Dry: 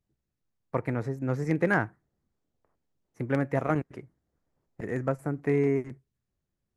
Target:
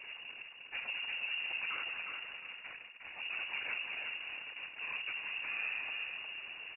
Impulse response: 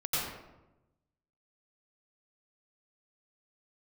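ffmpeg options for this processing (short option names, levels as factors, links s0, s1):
-af "aeval=exprs='val(0)+0.5*0.0376*sgn(val(0))':c=same,highpass=73,bandreject=f=1600:w=11,volume=25.1,asoftclip=hard,volume=0.0398,afftfilt=real='hypot(re,im)*cos(2*PI*random(0))':imag='hypot(re,im)*sin(2*PI*random(1))':win_size=512:overlap=0.75,lowpass=f=2500:t=q:w=0.5098,lowpass=f=2500:t=q:w=0.6013,lowpass=f=2500:t=q:w=0.9,lowpass=f=2500:t=q:w=2.563,afreqshift=-2900,aecho=1:1:358|716|1074|1432:0.562|0.163|0.0473|0.0137,volume=0.668"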